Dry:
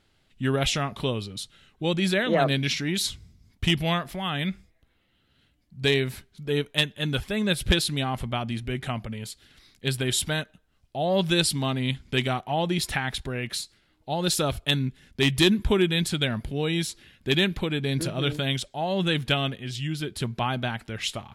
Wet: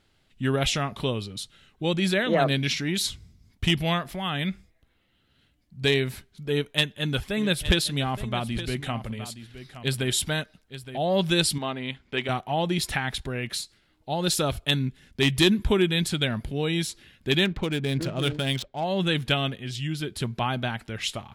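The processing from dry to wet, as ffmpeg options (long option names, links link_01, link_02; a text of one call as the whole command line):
ffmpeg -i in.wav -filter_complex "[0:a]asettb=1/sr,asplit=3[link_01][link_02][link_03];[link_01]atrim=end=6.504[link_04];[link_02]atrim=start=6.5:end=10.98,asetpts=PTS-STARTPTS,afade=type=in:duration=0.004:curve=qsin,afade=type=out:start_time=4.476:duration=0.004:curve=qsin,aecho=1:1:868:0.224,atrim=end_sample=197568[link_05];[link_03]atrim=start=10.976[link_06];[link_04][link_05]acrossfade=duration=0.004:curve1=hsin:curve2=qsin[link_07];[link_07][link_06]acrossfade=duration=0.004:curve1=qsin:curve2=hsin,asettb=1/sr,asplit=3[link_08][link_09][link_10];[link_08]atrim=end=11.584[link_11];[link_09]atrim=start=11.58:end=12.29,asetpts=PTS-STARTPTS,afade=type=in:duration=0.004:curve=qsin,afade=type=out:start_time=0.706:duration=0.004:curve=qsin,bass=frequency=250:gain=-12,treble=frequency=4000:gain=-13[link_12];[link_10]atrim=start=12.286[link_13];[link_11][link_12]acrossfade=duration=0.004:curve1=hsin:curve2=qsin[link_14];[link_14][link_13]acrossfade=duration=0.004:curve1=qsin:curve2=hsin,asettb=1/sr,asplit=3[link_15][link_16][link_17];[link_15]atrim=end=17.454[link_18];[link_16]atrim=start=17.45:end=18.84,asetpts=PTS-STARTPTS,afade=type=in:duration=0.004:curve=qsin,afade=type=out:start_time=1.386:duration=0.004:curve=qsin,adynamicsmooth=sensitivity=7.5:basefreq=1600[link_19];[link_17]atrim=start=18.836[link_20];[link_18][link_19]acrossfade=duration=0.004:curve1=hsin:curve2=qsin[link_21];[link_21][link_20]acrossfade=duration=0.004:curve1=qsin:curve2=hsin" out.wav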